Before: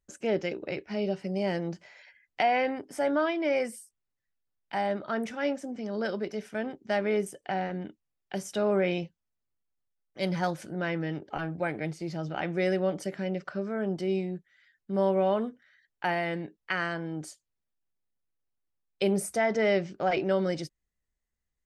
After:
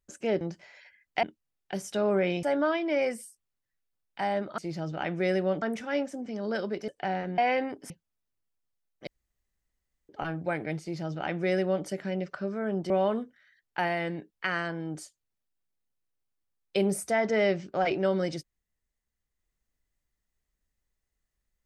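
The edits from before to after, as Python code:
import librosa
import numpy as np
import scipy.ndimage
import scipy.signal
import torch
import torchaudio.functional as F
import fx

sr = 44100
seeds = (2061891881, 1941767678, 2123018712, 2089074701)

y = fx.edit(x, sr, fx.cut(start_s=0.41, length_s=1.22),
    fx.swap(start_s=2.45, length_s=0.52, other_s=7.84, other_length_s=1.2),
    fx.cut(start_s=6.38, length_s=0.96),
    fx.room_tone_fill(start_s=10.21, length_s=1.02),
    fx.duplicate(start_s=11.95, length_s=1.04, to_s=5.12),
    fx.cut(start_s=14.04, length_s=1.12), tone=tone)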